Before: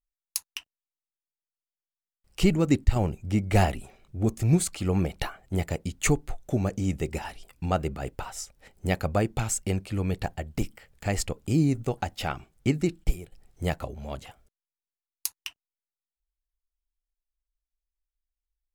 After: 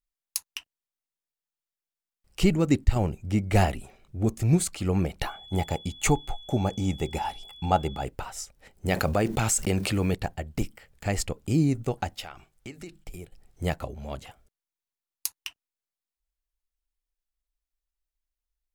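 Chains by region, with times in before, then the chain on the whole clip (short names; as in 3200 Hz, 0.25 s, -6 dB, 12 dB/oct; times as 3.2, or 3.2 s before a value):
5.26–8.03 bell 830 Hz +13 dB 0.25 oct + notch 1800 Hz, Q 15 + whine 3400 Hz -45 dBFS
8.88–10.15 block floating point 7-bit + low shelf 110 Hz -8 dB + fast leveller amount 70%
12.2–13.14 bell 150 Hz -10.5 dB 2.9 oct + notches 50/100/150/200 Hz + compressor 5:1, threshold -37 dBFS
whole clip: dry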